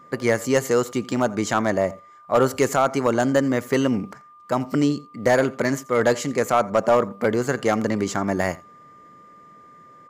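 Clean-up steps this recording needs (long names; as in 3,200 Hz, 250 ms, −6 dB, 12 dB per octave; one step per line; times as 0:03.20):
clipped peaks rebuilt −9.5 dBFS
notch filter 1,200 Hz, Q 30
echo removal 85 ms −21.5 dB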